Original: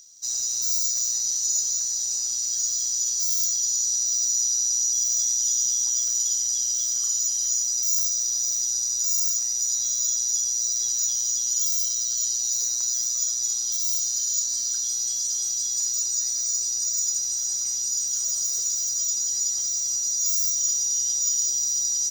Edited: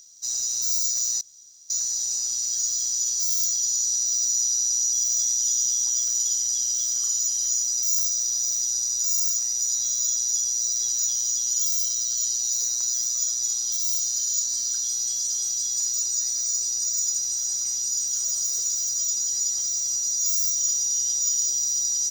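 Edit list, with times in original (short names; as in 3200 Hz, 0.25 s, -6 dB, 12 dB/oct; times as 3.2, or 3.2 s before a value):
1.21–1.7 room tone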